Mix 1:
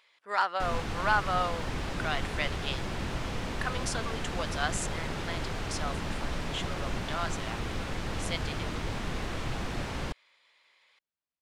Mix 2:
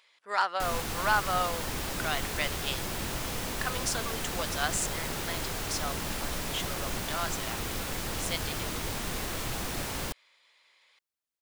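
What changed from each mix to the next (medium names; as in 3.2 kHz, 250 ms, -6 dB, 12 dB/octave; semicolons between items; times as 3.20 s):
background: remove distance through air 70 m; master: add tone controls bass -3 dB, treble +5 dB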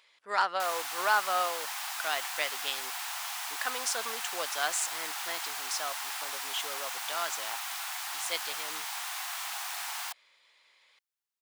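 background: add steep high-pass 710 Hz 96 dB/octave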